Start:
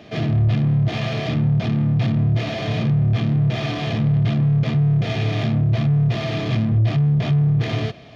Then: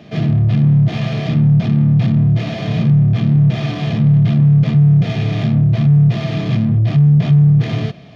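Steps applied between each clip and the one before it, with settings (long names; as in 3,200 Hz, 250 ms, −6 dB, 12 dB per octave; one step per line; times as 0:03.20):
parametric band 170 Hz +10 dB 0.78 octaves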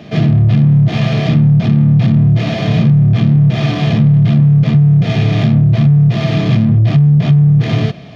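downward compressor, threshold −12 dBFS, peak gain reduction 5 dB
level +6 dB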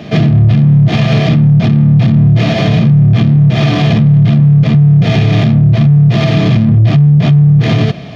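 brickwall limiter −8.5 dBFS, peak gain reduction 6.5 dB
level +6.5 dB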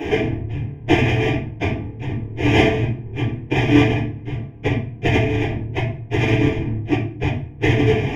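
compressor whose output falls as the input rises −13 dBFS, ratio −0.5
phaser with its sweep stopped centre 860 Hz, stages 8
convolution reverb RT60 0.45 s, pre-delay 6 ms, DRR −8 dB
level −7.5 dB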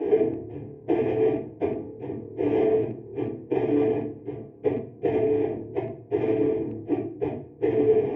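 loose part that buzzes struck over −17 dBFS, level −25 dBFS
brickwall limiter −10.5 dBFS, peak gain reduction 8.5 dB
resonant band-pass 440 Hz, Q 2.7
level +3.5 dB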